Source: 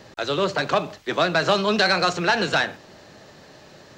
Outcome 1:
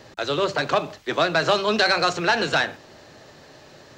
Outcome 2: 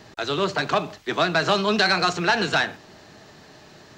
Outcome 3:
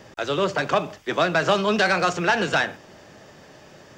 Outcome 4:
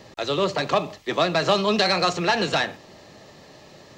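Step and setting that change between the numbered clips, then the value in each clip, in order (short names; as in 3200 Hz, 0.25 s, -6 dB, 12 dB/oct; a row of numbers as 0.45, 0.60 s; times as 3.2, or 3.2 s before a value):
notch, frequency: 190, 540, 4100, 1500 Hz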